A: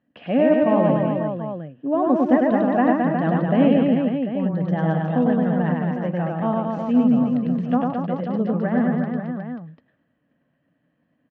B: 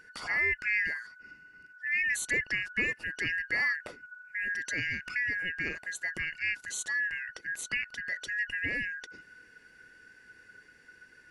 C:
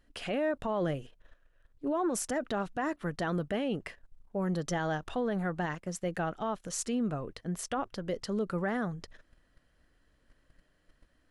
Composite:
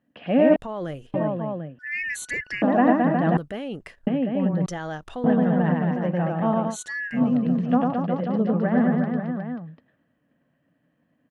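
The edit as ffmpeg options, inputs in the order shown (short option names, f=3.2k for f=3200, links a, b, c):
-filter_complex "[2:a]asplit=3[a][b][c];[1:a]asplit=2[d][e];[0:a]asplit=6[f][g][h][i][j][k];[f]atrim=end=0.562[l];[a]atrim=start=0.558:end=1.142[m];[g]atrim=start=1.138:end=1.792[n];[d]atrim=start=1.788:end=2.622[o];[h]atrim=start=2.618:end=3.372[p];[b]atrim=start=3.368:end=4.072[q];[i]atrim=start=4.068:end=4.662[r];[c]atrim=start=4.658:end=5.242[s];[j]atrim=start=5.238:end=6.77[t];[e]atrim=start=6.67:end=7.22[u];[k]atrim=start=7.12[v];[l][m]acrossfade=d=0.004:c1=hsin:c2=hsin[w];[w][n]acrossfade=d=0.004:c1=hsin:c2=hsin[x];[x][o]acrossfade=d=0.004:c1=hsin:c2=hsin[y];[y][p]acrossfade=d=0.004:c1=hsin:c2=hsin[z];[z][q]acrossfade=d=0.004:c1=hsin:c2=hsin[aa];[aa][r]acrossfade=d=0.004:c1=hsin:c2=hsin[ab];[ab][s]acrossfade=d=0.004:c1=hsin:c2=hsin[ac];[ac][t]acrossfade=d=0.004:c1=hsin:c2=hsin[ad];[ad][u]acrossfade=d=0.1:c1=tri:c2=tri[ae];[ae][v]acrossfade=d=0.1:c1=tri:c2=tri"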